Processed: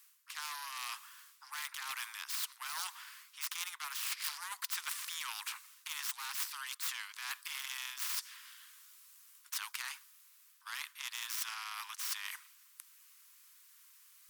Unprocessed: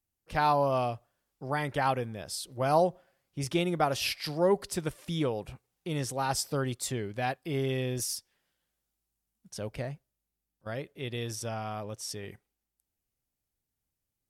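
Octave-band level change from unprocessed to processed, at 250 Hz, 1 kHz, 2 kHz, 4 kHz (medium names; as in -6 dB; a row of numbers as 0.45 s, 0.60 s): under -40 dB, -15.0 dB, -3.0 dB, -1.5 dB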